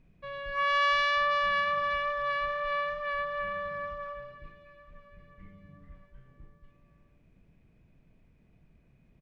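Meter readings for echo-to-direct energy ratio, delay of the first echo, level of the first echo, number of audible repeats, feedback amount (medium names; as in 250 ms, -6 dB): -19.5 dB, 959 ms, -20.5 dB, 3, 44%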